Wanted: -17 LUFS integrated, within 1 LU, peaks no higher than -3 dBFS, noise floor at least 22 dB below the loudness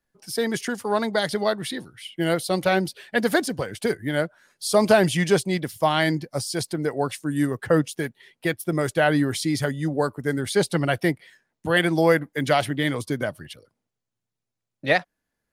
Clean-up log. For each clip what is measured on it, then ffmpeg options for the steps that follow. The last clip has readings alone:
loudness -24.0 LUFS; peak level -5.5 dBFS; loudness target -17.0 LUFS
-> -af "volume=2.24,alimiter=limit=0.708:level=0:latency=1"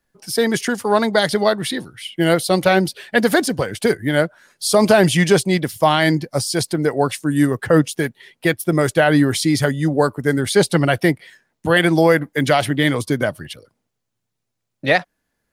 loudness -17.5 LUFS; peak level -3.0 dBFS; noise floor -77 dBFS

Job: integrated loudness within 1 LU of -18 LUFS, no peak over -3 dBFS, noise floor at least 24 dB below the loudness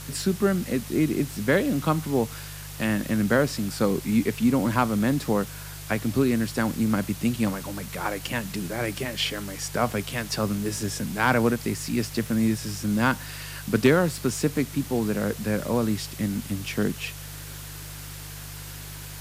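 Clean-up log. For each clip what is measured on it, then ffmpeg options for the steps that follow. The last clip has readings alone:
hum 50 Hz; highest harmonic 150 Hz; hum level -38 dBFS; noise floor -39 dBFS; noise floor target -50 dBFS; loudness -25.5 LUFS; peak level -8.5 dBFS; loudness target -18.0 LUFS
-> -af "bandreject=f=50:t=h:w=4,bandreject=f=100:t=h:w=4,bandreject=f=150:t=h:w=4"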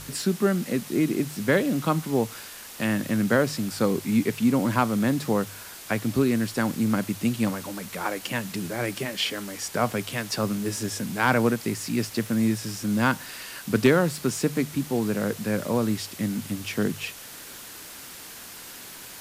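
hum not found; noise floor -42 dBFS; noise floor target -50 dBFS
-> -af "afftdn=nr=8:nf=-42"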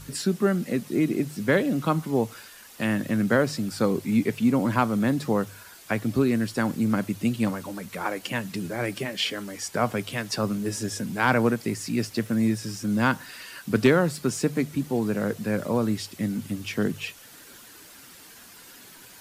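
noise floor -48 dBFS; noise floor target -50 dBFS
-> -af "afftdn=nr=6:nf=-48"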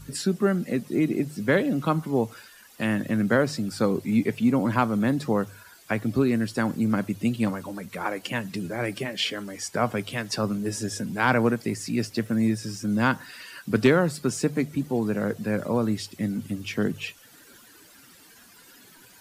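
noise floor -53 dBFS; loudness -26.0 LUFS; peak level -8.5 dBFS; loudness target -18.0 LUFS
-> -af "volume=2.51,alimiter=limit=0.708:level=0:latency=1"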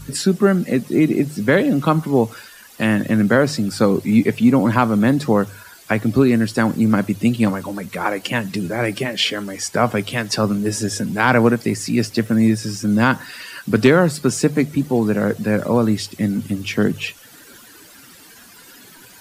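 loudness -18.5 LUFS; peak level -3.0 dBFS; noise floor -45 dBFS

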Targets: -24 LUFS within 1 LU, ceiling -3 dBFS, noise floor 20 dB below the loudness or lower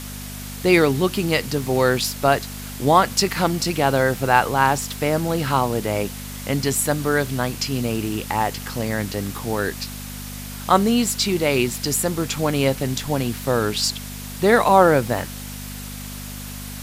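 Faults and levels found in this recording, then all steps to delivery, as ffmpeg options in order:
hum 50 Hz; highest harmonic 250 Hz; hum level -32 dBFS; noise floor -33 dBFS; noise floor target -41 dBFS; loudness -20.5 LUFS; peak level -1.5 dBFS; loudness target -24.0 LUFS
-> -af "bandreject=f=50:t=h:w=4,bandreject=f=100:t=h:w=4,bandreject=f=150:t=h:w=4,bandreject=f=200:t=h:w=4,bandreject=f=250:t=h:w=4"
-af "afftdn=nr=8:nf=-33"
-af "volume=0.668"

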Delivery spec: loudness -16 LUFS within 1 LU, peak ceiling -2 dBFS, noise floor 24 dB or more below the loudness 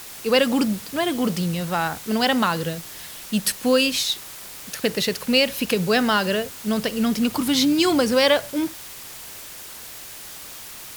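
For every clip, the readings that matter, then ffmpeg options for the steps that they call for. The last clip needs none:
noise floor -39 dBFS; noise floor target -46 dBFS; loudness -21.5 LUFS; peak level -4.5 dBFS; loudness target -16.0 LUFS
-> -af "afftdn=nr=7:nf=-39"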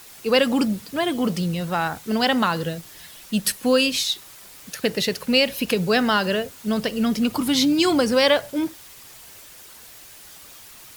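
noise floor -45 dBFS; noise floor target -46 dBFS
-> -af "afftdn=nr=6:nf=-45"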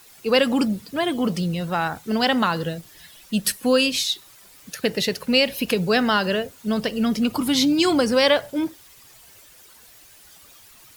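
noise floor -50 dBFS; loudness -21.5 LUFS; peak level -5.0 dBFS; loudness target -16.0 LUFS
-> -af "volume=1.88,alimiter=limit=0.794:level=0:latency=1"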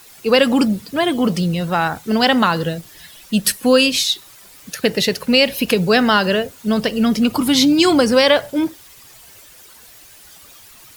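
loudness -16.5 LUFS; peak level -2.0 dBFS; noise floor -44 dBFS

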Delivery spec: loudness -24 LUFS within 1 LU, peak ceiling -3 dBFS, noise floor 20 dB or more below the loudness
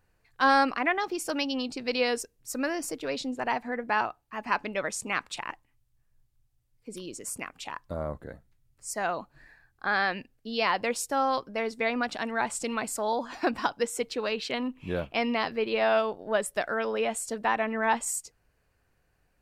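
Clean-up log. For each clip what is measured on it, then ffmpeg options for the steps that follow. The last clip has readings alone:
loudness -29.5 LUFS; peak level -11.0 dBFS; loudness target -24.0 LUFS
-> -af "volume=1.88"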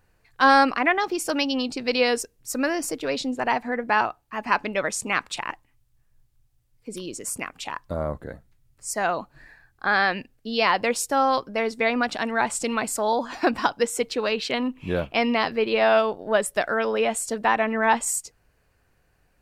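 loudness -24.0 LUFS; peak level -5.5 dBFS; noise floor -66 dBFS

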